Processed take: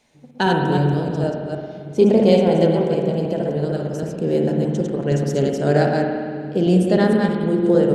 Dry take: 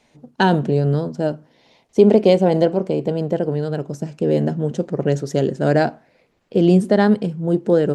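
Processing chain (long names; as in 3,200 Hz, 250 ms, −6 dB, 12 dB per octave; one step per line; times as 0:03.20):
delay that plays each chunk backwards 155 ms, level −3 dB
high-shelf EQ 5,400 Hz +7 dB
on a send: bucket-brigade delay 339 ms, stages 1,024, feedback 72%, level −14.5 dB
on the sum: spring reverb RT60 2 s, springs 55 ms, chirp 50 ms, DRR 2.5 dB
level −4 dB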